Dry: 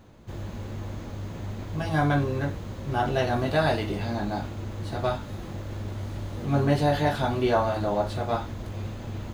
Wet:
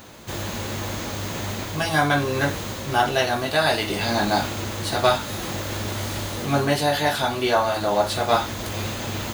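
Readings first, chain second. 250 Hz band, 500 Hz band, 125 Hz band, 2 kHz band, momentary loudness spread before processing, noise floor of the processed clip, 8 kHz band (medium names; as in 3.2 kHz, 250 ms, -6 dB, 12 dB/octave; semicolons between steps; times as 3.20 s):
+2.0 dB, +4.0 dB, -0.5 dB, +9.0 dB, 13 LU, -32 dBFS, +17.0 dB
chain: tilt EQ +3 dB/octave; gain riding within 5 dB 0.5 s; trim +7.5 dB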